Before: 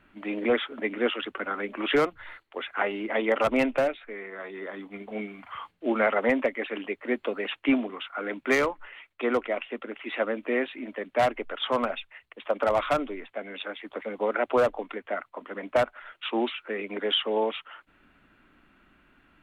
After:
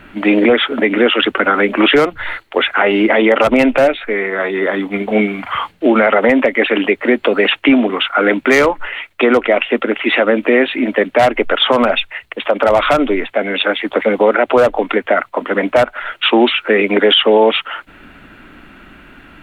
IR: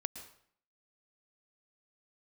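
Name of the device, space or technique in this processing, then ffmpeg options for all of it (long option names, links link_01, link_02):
mastering chain: -af "equalizer=frequency=1100:width_type=o:width=0.3:gain=-3.5,acompressor=threshold=-27dB:ratio=2.5,alimiter=level_in=22dB:limit=-1dB:release=50:level=0:latency=1,volume=-1dB"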